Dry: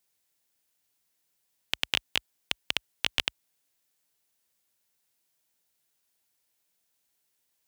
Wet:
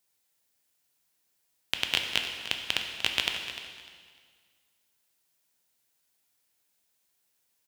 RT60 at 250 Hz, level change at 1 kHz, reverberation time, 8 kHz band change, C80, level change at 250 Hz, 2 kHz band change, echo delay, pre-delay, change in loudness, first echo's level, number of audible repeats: 1.9 s, +2.0 dB, 1.8 s, +1.5 dB, 5.5 dB, +1.5 dB, +2.0 dB, 300 ms, 5 ms, +1.0 dB, -12.5 dB, 2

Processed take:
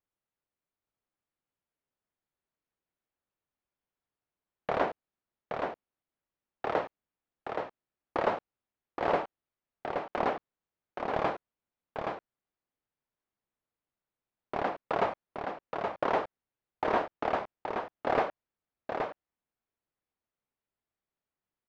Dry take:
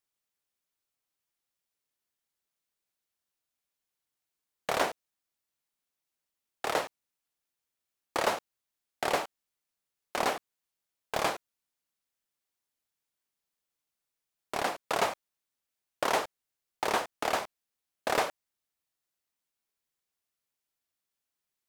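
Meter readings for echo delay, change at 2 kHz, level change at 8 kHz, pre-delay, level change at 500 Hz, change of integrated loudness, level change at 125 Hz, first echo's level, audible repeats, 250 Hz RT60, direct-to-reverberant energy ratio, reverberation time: 823 ms, -3.0 dB, under -20 dB, no reverb, +2.5 dB, -1.5 dB, +4.0 dB, -5.0 dB, 1, no reverb, no reverb, no reverb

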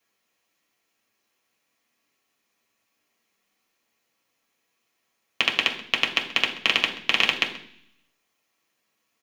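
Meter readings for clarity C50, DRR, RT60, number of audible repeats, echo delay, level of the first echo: 10.0 dB, 0.0 dB, 0.60 s, 1, 132 ms, -18.0 dB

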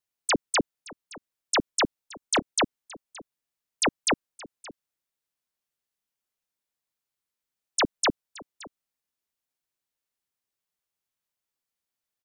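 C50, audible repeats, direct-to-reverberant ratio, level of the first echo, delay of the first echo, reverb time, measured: no reverb, 1, no reverb, -20.5 dB, 571 ms, no reverb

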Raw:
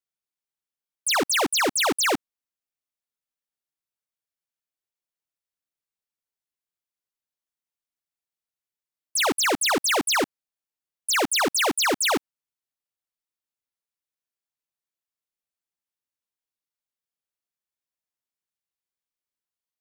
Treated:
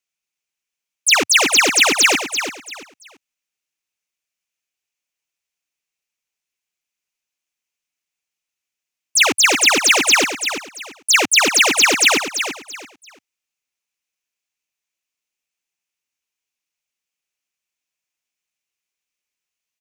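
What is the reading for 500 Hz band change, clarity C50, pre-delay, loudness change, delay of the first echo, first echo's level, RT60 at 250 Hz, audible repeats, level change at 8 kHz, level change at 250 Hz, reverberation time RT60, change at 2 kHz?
+3.5 dB, no reverb, no reverb, +8.5 dB, 338 ms, -8.5 dB, no reverb, 3, +10.0 dB, +3.0 dB, no reverb, +11.0 dB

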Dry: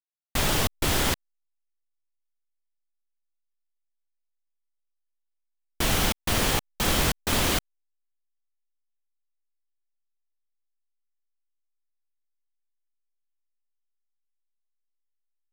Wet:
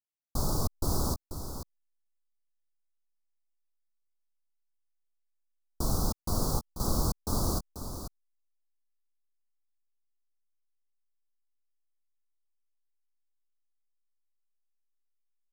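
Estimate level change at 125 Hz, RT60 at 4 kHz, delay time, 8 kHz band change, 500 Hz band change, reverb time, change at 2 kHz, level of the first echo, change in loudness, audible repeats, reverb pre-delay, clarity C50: -2.0 dB, no reverb, 488 ms, -8.0 dB, -6.5 dB, no reverb, -28.0 dB, -9.5 dB, -8.0 dB, 1, no reverb, no reverb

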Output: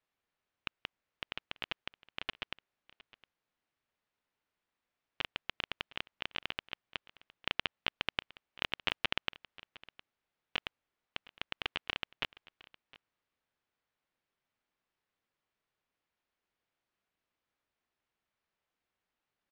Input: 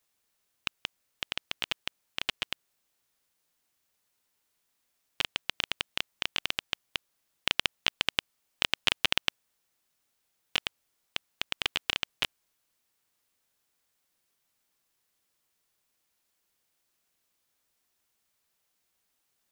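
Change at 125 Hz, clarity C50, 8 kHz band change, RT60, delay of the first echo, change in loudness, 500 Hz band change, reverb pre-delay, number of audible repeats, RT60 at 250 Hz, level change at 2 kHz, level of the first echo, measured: -4.0 dB, no reverb, -20.5 dB, no reverb, 711 ms, -7.5 dB, -4.0 dB, no reverb, 1, no reverb, -6.0 dB, -21.0 dB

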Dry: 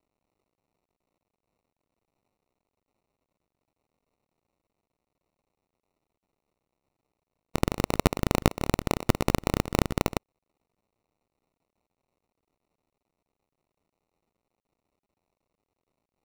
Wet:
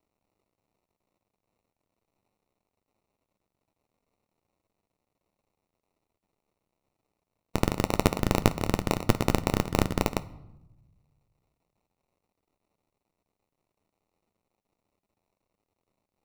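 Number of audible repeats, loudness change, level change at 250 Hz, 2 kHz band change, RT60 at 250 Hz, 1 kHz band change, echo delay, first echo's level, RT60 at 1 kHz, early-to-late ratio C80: no echo, +0.5 dB, +0.5 dB, 0.0 dB, 1.4 s, +0.5 dB, no echo, no echo, 0.90 s, 21.0 dB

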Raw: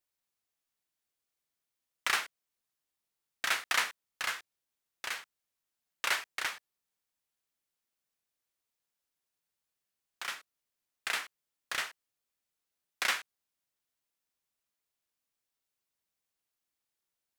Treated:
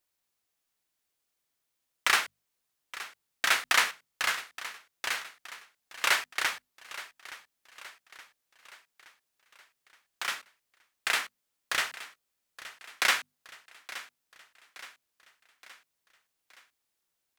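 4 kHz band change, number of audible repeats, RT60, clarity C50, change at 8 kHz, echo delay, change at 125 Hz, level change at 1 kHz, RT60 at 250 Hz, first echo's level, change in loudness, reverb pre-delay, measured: +5.5 dB, 4, no reverb, no reverb, +5.5 dB, 871 ms, no reading, +5.5 dB, no reverb, -16.0 dB, +4.5 dB, no reverb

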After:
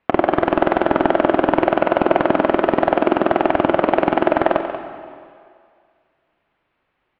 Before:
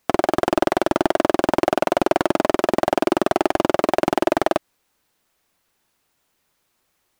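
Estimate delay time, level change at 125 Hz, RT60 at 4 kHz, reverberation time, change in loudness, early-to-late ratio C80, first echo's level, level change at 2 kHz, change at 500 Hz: 186 ms, +3.5 dB, 2.1 s, 2.2 s, +3.0 dB, 7.5 dB, -11.5 dB, +3.5 dB, +3.0 dB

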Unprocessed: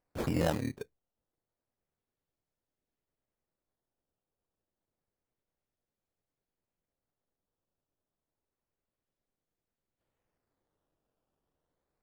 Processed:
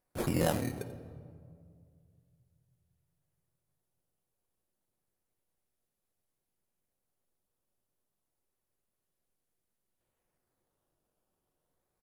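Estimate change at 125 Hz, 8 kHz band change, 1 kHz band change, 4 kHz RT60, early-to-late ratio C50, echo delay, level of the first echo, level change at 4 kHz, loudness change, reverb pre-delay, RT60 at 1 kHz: +1.0 dB, +6.0 dB, +1.5 dB, 1.2 s, 11.5 dB, 88 ms, -16.5 dB, +1.5 dB, -0.5 dB, 5 ms, 1.9 s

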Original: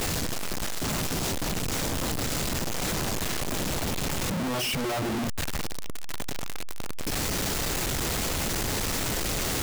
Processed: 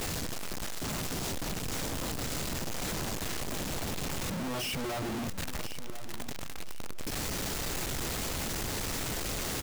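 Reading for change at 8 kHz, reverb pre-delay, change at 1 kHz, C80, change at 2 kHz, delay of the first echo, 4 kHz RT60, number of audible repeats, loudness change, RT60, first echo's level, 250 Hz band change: -6.0 dB, no reverb, -6.0 dB, no reverb, -6.0 dB, 1028 ms, no reverb, 2, -6.0 dB, no reverb, -13.0 dB, -6.0 dB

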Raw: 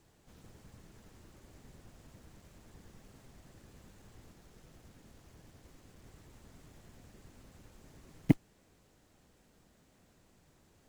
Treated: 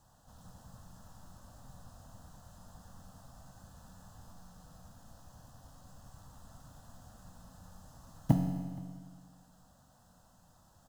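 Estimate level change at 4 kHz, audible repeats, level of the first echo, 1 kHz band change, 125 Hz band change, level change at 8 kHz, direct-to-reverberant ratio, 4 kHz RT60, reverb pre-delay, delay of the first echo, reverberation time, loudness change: -0.5 dB, 1, -22.5 dB, +7.5 dB, +3.0 dB, +3.5 dB, 1.5 dB, 1.7 s, 5 ms, 471 ms, 1.7 s, -2.5 dB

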